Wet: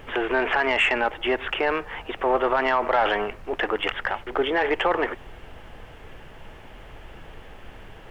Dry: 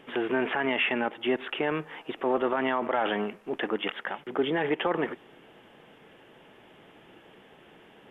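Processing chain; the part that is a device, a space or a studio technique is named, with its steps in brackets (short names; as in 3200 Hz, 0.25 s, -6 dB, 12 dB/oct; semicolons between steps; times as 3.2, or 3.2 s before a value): aircraft cabin announcement (BPF 480–3100 Hz; soft clip -18.5 dBFS, distortion -22 dB; brown noise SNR 16 dB); gain +8.5 dB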